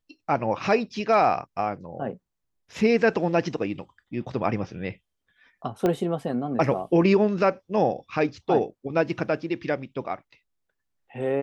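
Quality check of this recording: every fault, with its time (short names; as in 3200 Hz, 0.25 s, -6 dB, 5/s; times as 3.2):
5.86 pop -12 dBFS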